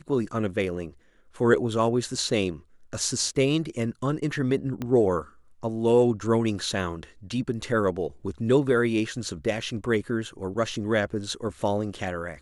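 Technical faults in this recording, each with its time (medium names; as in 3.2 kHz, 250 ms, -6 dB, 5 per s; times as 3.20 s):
4.82 s: pop -18 dBFS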